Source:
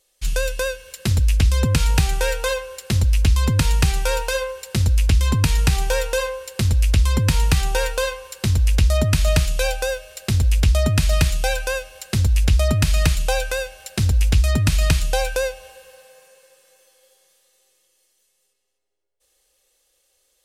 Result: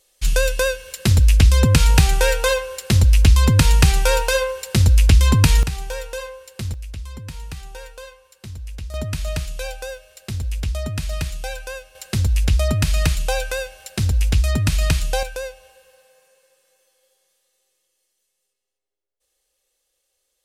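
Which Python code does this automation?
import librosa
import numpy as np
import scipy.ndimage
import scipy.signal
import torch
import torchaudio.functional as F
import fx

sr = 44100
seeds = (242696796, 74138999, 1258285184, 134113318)

y = fx.gain(x, sr, db=fx.steps((0.0, 4.0), (5.63, -8.0), (6.74, -16.0), (8.94, -8.0), (11.95, -1.0), (15.23, -7.0)))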